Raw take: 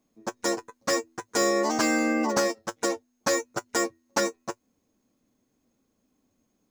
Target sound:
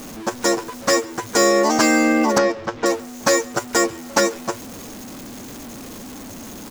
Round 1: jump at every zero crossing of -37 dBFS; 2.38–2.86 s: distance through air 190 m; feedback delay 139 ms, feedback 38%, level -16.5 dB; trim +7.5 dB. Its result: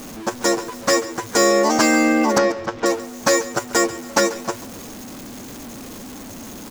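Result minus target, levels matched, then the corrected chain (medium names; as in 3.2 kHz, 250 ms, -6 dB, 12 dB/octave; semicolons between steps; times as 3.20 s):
echo-to-direct +8 dB
jump at every zero crossing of -37 dBFS; 2.38–2.86 s: distance through air 190 m; feedback delay 139 ms, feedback 38%, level -24.5 dB; trim +7.5 dB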